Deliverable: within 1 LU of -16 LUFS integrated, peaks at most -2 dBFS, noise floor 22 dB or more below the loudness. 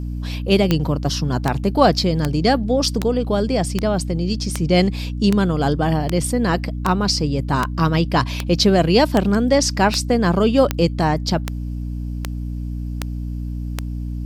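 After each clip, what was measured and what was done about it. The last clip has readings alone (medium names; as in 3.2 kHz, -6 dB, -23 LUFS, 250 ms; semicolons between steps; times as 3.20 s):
clicks found 18; hum 60 Hz; highest harmonic 300 Hz; hum level -23 dBFS; loudness -19.5 LUFS; peak level -1.5 dBFS; loudness target -16.0 LUFS
-> de-click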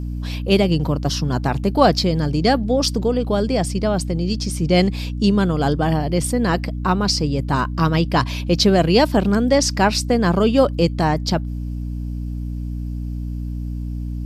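clicks found 0; hum 60 Hz; highest harmonic 300 Hz; hum level -23 dBFS
-> de-hum 60 Hz, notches 5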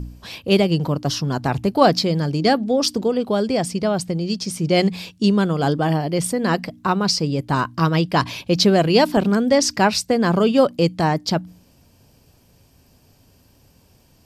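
hum not found; loudness -19.5 LUFS; peak level -1.5 dBFS; loudness target -16.0 LUFS
-> trim +3.5 dB; peak limiter -2 dBFS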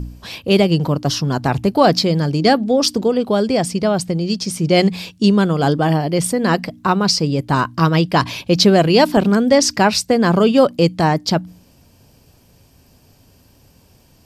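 loudness -16.0 LUFS; peak level -2.0 dBFS; noise floor -52 dBFS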